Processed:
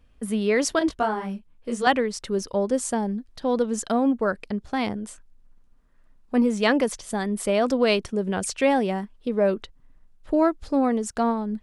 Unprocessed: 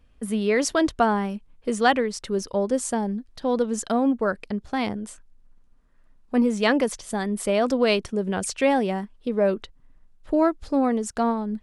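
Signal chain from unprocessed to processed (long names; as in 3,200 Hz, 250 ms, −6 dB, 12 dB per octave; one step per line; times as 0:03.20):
0:00.79–0:01.87: micro pitch shift up and down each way 33 cents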